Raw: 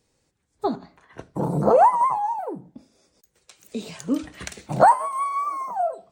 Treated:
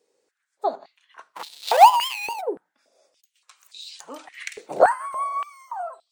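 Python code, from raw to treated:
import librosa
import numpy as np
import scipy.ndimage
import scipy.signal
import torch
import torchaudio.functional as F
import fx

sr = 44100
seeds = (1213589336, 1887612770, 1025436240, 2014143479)

y = fx.dead_time(x, sr, dead_ms=0.2, at=(1.3, 2.4), fade=0.02)
y = fx.filter_held_highpass(y, sr, hz=3.5, low_hz=430.0, high_hz=4000.0)
y = F.gain(torch.from_numpy(y), -4.0).numpy()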